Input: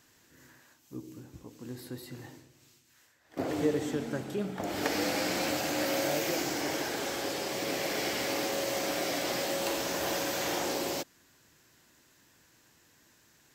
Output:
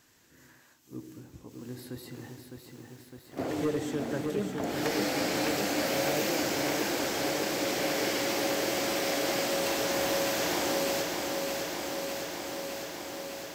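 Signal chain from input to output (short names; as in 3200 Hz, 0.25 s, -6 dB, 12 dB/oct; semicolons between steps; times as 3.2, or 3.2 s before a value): pre-echo 56 ms -18 dB; hard clip -23.5 dBFS, distortion -22 dB; lo-fi delay 0.608 s, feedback 80%, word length 10-bit, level -5 dB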